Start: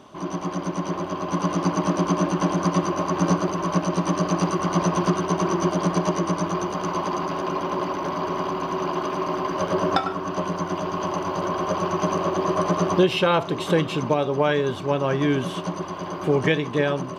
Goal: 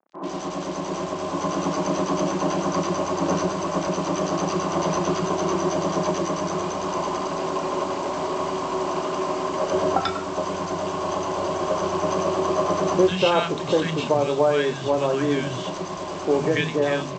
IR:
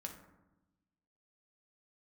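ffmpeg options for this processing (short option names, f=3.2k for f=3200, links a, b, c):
-filter_complex "[0:a]aresample=16000,acrusher=bits=5:mix=0:aa=0.5,aresample=44100,equalizer=f=680:w=1.5:g=3,areverse,acompressor=mode=upward:threshold=-30dB:ratio=2.5,areverse,bandreject=f=50:t=h:w=6,bandreject=f=100:t=h:w=6,bandreject=f=150:t=h:w=6,asplit=2[a][b];[b]adelay=32,volume=-11dB[c];[a][c]amix=inputs=2:normalize=0,acrossover=split=190|1300[d][e][f];[f]adelay=90[g];[d]adelay=130[h];[h][e][g]amix=inputs=3:normalize=0"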